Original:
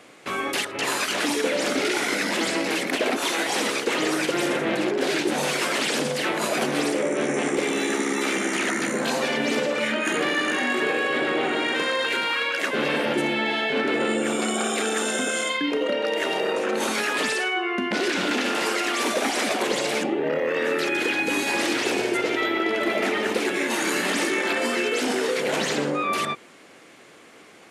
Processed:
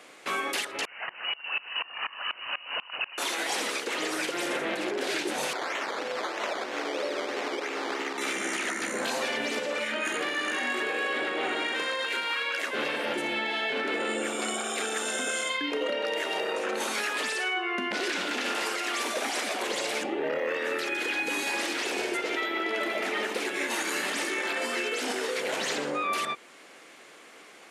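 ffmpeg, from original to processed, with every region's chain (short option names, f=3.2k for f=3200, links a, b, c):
-filter_complex "[0:a]asettb=1/sr,asplit=3[a][b][c];[a]atrim=end=0.854[d];[b]atrim=start=0.85:end=3.18,asetpts=PTS-STARTPTS,afade=t=in:d=0.004:c=qsin,afade=t=out:st=2.326:d=0.004:c=qsin,highpass=63,lowpass=f=2.7k:t=q:w=0.5098,lowpass=f=2.7k:t=q:w=0.6013,lowpass=f=2.7k:t=q:w=0.9,lowpass=f=2.7k:t=q:w=2.563,afreqshift=-3200,aeval=exprs='val(0)*pow(10,-25*if(lt(mod(-4.1*n/s,1),2*abs(-4.1)/1000),1-mod(-4.1*n/s,1)/(2*abs(-4.1)/1000),(mod(-4.1*n/s,1)-2*abs(-4.1)/1000)/(1-2*abs(-4.1)/1000))/20)':c=same[e];[c]atrim=start=3.176[f];[d][e]acrossfade=d=0.004:c1=hsin:c2=qsin[g];[g][f]acrossfade=d=0.004:c1=qsin:c2=hsin,asettb=1/sr,asplit=3[h][i][j];[h]atrim=end=5.534[k];[i]atrim=start=5.53:end=8.18,asetpts=PTS-STARTPTS,afade=t=in:d=0.004:c=qsin,afade=t=out:st=2.646:d=0.004:c=qsin,acrusher=samples=13:mix=1:aa=0.000001:lfo=1:lforange=7.8:lforate=3.1,highpass=320,lowpass=4.9k[l];[j]atrim=start=8.176[m];[k][l]acrossfade=d=0.004:c1=hsin:c2=qsin[n];[n][m]acrossfade=d=0.004:c1=qsin:c2=hsin,highpass=f=500:p=1,alimiter=limit=-20dB:level=0:latency=1:release=353"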